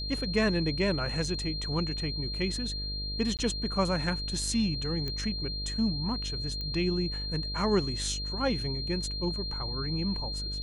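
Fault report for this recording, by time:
mains buzz 50 Hz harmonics 12 −37 dBFS
whistle 4,200 Hz −35 dBFS
0:03.37–0:03.39: drop-out 18 ms
0:05.08: click −21 dBFS
0:06.61: click −24 dBFS

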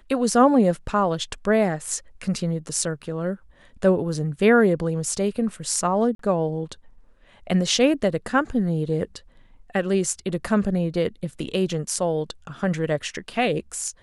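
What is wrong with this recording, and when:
0:06.15–0:06.19: drop-out 43 ms

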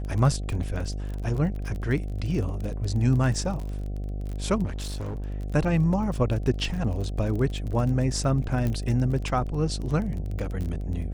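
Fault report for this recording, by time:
mains buzz 50 Hz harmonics 15 −31 dBFS
surface crackle 27 per second −31 dBFS
0:04.65–0:05.30: clipping −29 dBFS
0:08.67: click −17 dBFS

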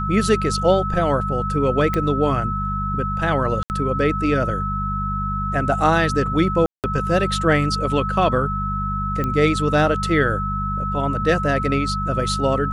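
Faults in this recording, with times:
mains hum 50 Hz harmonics 4 −26 dBFS
whistle 1,300 Hz −24 dBFS
0:01.94: click −9 dBFS
0:03.63–0:03.70: drop-out 69 ms
0:06.66–0:06.84: drop-out 178 ms
0:09.24: click −12 dBFS

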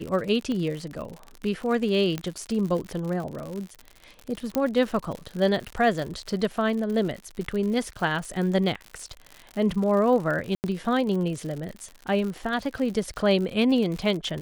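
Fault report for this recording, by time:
surface crackle 81 per second −31 dBFS
0:00.52: click −20 dBFS
0:02.18: click −15 dBFS
0:04.55: click −10 dBFS
0:10.55–0:10.64: drop-out 89 ms

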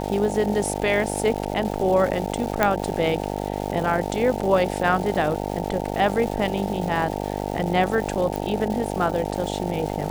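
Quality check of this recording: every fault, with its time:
mains buzz 50 Hz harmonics 18 −28 dBFS
surface crackle 530 per second −30 dBFS
0:02.63: click −5 dBFS
0:08.36: click

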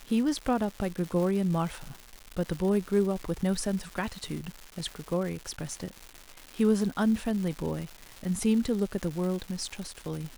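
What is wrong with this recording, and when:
surface crackle 400 per second −35 dBFS

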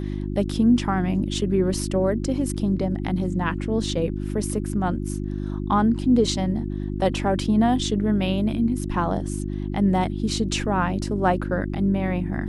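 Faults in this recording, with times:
mains hum 50 Hz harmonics 7 −28 dBFS

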